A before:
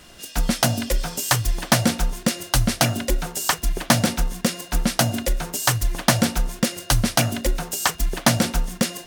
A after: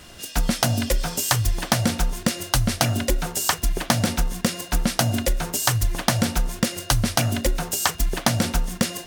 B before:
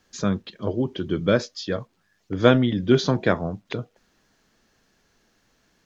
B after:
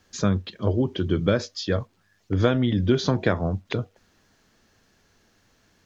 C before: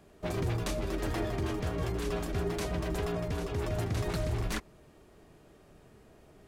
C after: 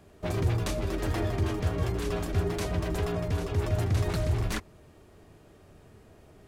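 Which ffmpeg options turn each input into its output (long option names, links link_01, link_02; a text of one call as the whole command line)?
ffmpeg -i in.wav -af "equalizer=frequency=92:width=3.8:gain=9.5,acompressor=threshold=-18dB:ratio=6,volume=2dB" out.wav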